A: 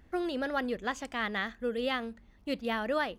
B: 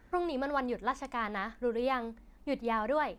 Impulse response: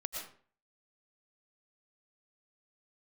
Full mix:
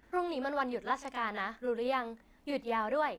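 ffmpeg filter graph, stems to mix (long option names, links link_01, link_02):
-filter_complex "[0:a]volume=-2dB[link_01];[1:a]adelay=28,volume=-0.5dB,asplit=2[link_02][link_03];[link_03]apad=whole_len=140536[link_04];[link_01][link_04]sidechaincompress=threshold=-44dB:ratio=8:attack=26:release=225[link_05];[link_05][link_02]amix=inputs=2:normalize=0,lowshelf=frequency=160:gain=-10"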